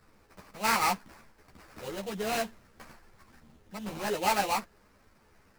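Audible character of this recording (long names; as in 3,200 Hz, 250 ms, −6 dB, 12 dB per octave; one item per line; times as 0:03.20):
aliases and images of a low sample rate 3,400 Hz, jitter 20%
a shimmering, thickened sound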